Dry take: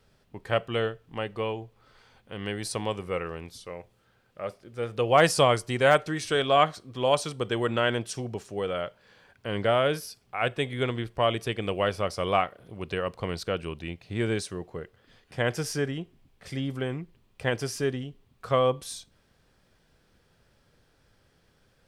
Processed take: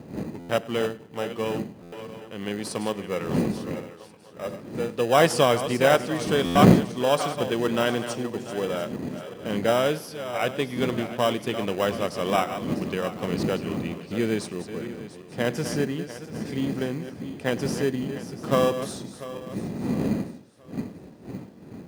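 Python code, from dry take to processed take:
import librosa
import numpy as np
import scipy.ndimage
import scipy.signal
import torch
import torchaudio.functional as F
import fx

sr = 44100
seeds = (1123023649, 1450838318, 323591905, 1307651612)

p1 = fx.reverse_delay_fb(x, sr, ms=346, feedback_pct=59, wet_db=-10.5)
p2 = fx.dmg_wind(p1, sr, seeds[0], corner_hz=240.0, level_db=-32.0)
p3 = p2 + fx.echo_feedback(p2, sr, ms=99, feedback_pct=39, wet_db=-21.0, dry=0)
p4 = fx.dynamic_eq(p3, sr, hz=220.0, q=1.8, threshold_db=-42.0, ratio=4.0, max_db=5)
p5 = fx.sample_hold(p4, sr, seeds[1], rate_hz=2200.0, jitter_pct=0)
p6 = p4 + F.gain(torch.from_numpy(p5), -7.5).numpy()
p7 = scipy.signal.sosfilt(scipy.signal.butter(2, 160.0, 'highpass', fs=sr, output='sos'), p6)
p8 = fx.buffer_glitch(p7, sr, at_s=(0.39, 1.82, 6.45), block=512, repeats=8)
y = F.gain(torch.from_numpy(p8), -1.0).numpy()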